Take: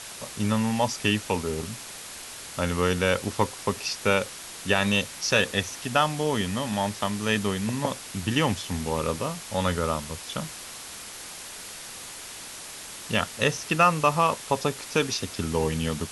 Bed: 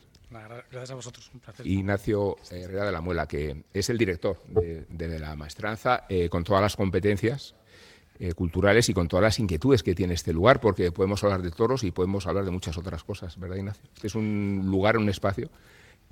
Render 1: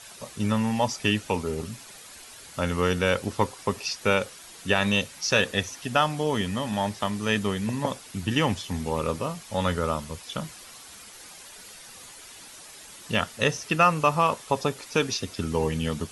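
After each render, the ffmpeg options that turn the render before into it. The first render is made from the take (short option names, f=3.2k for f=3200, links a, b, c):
-af "afftdn=nr=9:nf=-41"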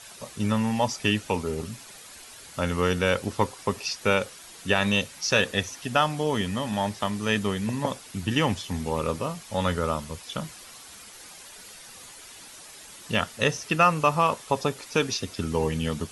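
-af anull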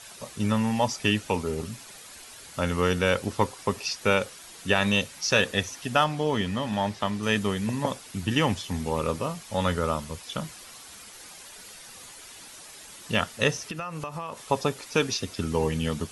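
-filter_complex "[0:a]asettb=1/sr,asplit=3[a][b][c];[a]atrim=end=6.044[d];[b]atrim=start=6.04:end=7.23,asetpts=PTS-STARTPTS,afade=t=in:d=0.004:c=qsin,afade=t=out:st=1.186:d=0.004:c=qsin,acrossover=split=5800[e][f];[f]acompressor=threshold=-54dB:ratio=4:attack=1:release=60[g];[e][g]amix=inputs=2:normalize=0[h];[c]atrim=start=7.226[i];[d][h]acrossfade=d=0.004:c1=hsin:c2=qsin[j];[j][i]acrossfade=d=0.004:c1=qsin:c2=hsin,asettb=1/sr,asplit=3[k][l][m];[k]atrim=end=13.584[n];[l]atrim=start=13.58:end=14.43,asetpts=PTS-STARTPTS,afade=t=in:d=0.004:c=qsin,afade=t=out:st=0.846:d=0.004:c=qsin,acompressor=threshold=-30dB:ratio=10:attack=3.2:release=140:knee=1:detection=peak[o];[m]atrim=start=14.426[p];[n][o]acrossfade=d=0.004:c1=hsin:c2=qsin[q];[q][p]acrossfade=d=0.004:c1=qsin:c2=hsin"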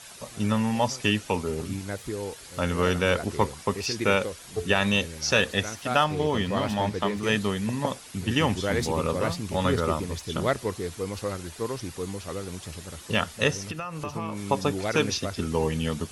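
-filter_complex "[1:a]volume=-7.5dB[a];[0:a][a]amix=inputs=2:normalize=0"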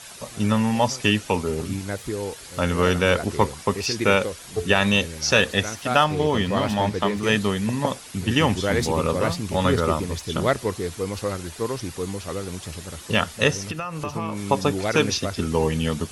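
-af "volume=4dB"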